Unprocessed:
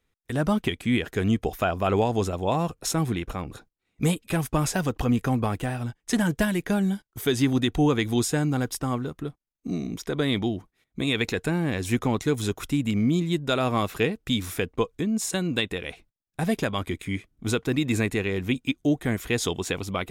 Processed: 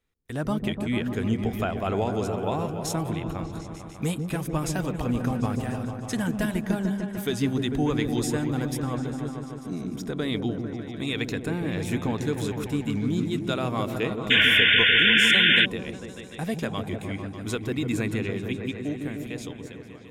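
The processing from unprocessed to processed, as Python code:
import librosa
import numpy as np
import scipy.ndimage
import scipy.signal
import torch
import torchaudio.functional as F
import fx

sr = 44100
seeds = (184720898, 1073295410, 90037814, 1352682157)

y = fx.fade_out_tail(x, sr, length_s=1.97)
y = fx.echo_opening(y, sr, ms=149, hz=400, octaves=1, feedback_pct=70, wet_db=-3)
y = fx.spec_paint(y, sr, seeds[0], shape='noise', start_s=14.3, length_s=1.36, low_hz=1400.0, high_hz=3600.0, level_db=-14.0)
y = y * 10.0 ** (-4.5 / 20.0)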